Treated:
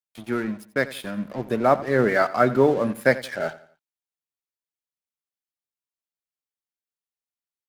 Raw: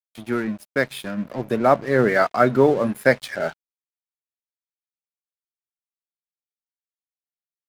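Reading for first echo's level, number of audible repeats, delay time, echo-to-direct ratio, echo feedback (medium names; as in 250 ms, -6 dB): -17.0 dB, 3, 87 ms, -16.5 dB, 36%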